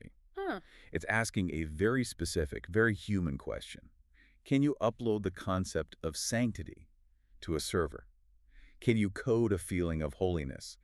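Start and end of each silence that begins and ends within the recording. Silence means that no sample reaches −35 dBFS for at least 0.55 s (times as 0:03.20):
0:03.72–0:04.51
0:06.69–0:07.43
0:07.99–0:08.82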